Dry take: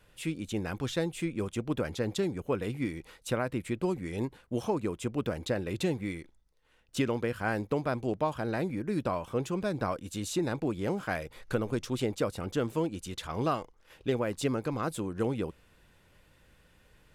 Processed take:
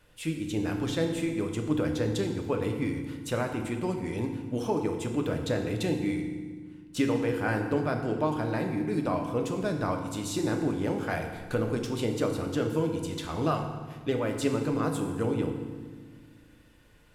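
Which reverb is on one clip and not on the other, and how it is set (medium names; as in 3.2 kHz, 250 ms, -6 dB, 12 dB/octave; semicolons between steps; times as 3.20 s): FDN reverb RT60 1.5 s, low-frequency decay 1.55×, high-frequency decay 0.8×, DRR 3 dB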